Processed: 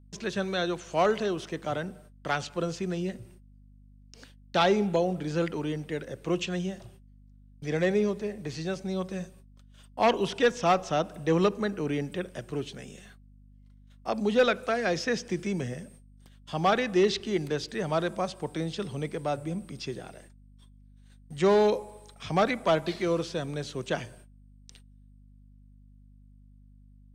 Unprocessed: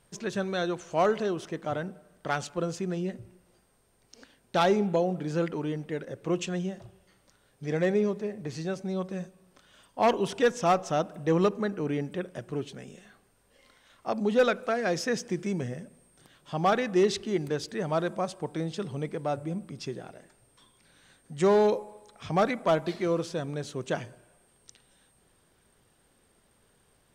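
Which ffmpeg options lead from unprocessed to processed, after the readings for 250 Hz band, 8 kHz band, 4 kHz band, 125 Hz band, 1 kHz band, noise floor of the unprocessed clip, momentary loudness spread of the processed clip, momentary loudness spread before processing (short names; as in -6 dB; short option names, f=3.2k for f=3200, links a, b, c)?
0.0 dB, -0.5 dB, +3.5 dB, 0.0 dB, 0.0 dB, -66 dBFS, 14 LU, 14 LU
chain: -filter_complex "[0:a]acrossover=split=210|740|2200[a][b][c][d];[d]acontrast=41[e];[a][b][c][e]amix=inputs=4:normalize=0,agate=range=-32dB:threshold=-53dB:ratio=16:detection=peak,aeval=exprs='val(0)+0.00224*(sin(2*PI*50*n/s)+sin(2*PI*2*50*n/s)/2+sin(2*PI*3*50*n/s)/3+sin(2*PI*4*50*n/s)/4+sin(2*PI*5*50*n/s)/5)':c=same,acrossover=split=5100[f][g];[g]acompressor=threshold=-50dB:ratio=4:attack=1:release=60[h];[f][h]amix=inputs=2:normalize=0"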